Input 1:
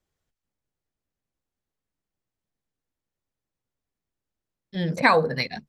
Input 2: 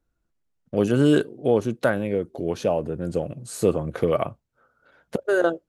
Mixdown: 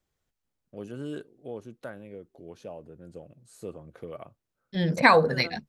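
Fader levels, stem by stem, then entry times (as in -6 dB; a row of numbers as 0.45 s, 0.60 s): +0.5 dB, -18.5 dB; 0.00 s, 0.00 s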